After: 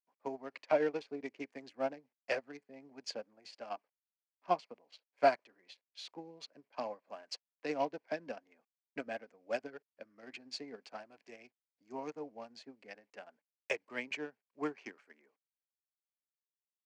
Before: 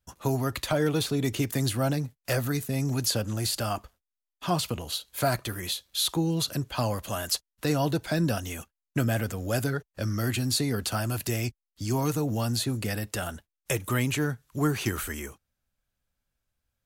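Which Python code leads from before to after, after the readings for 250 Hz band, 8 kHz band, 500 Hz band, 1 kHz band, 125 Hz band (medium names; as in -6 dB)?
-17.0 dB, -26.0 dB, -6.5 dB, -5.5 dB, -34.0 dB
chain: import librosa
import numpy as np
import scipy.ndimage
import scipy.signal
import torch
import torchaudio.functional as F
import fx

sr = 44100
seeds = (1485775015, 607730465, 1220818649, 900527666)

y = fx.wiener(x, sr, points=15)
y = fx.quant_dither(y, sr, seeds[0], bits=10, dither='none')
y = fx.cabinet(y, sr, low_hz=290.0, low_slope=24, high_hz=5000.0, hz=(340.0, 1300.0, 2300.0, 3700.0), db=(-9, -8, 6, -10))
y = fx.upward_expand(y, sr, threshold_db=-42.0, expansion=2.5)
y = y * librosa.db_to_amplitude(3.0)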